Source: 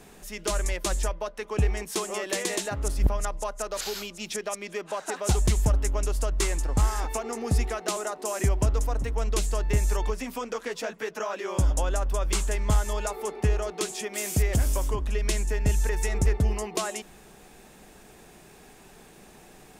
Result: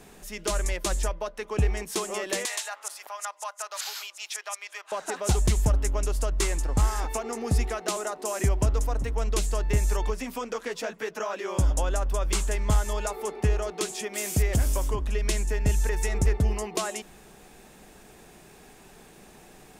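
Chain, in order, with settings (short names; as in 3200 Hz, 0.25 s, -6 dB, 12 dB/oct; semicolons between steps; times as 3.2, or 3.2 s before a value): 2.45–4.92 HPF 790 Hz 24 dB/oct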